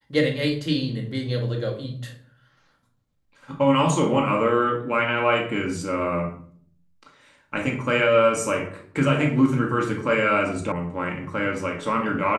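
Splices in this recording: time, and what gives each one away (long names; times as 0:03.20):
0:10.72: cut off before it has died away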